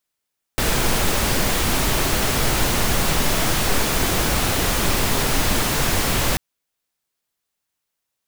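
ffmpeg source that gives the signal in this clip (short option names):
-f lavfi -i "anoisesrc=c=pink:a=0.575:d=5.79:r=44100:seed=1"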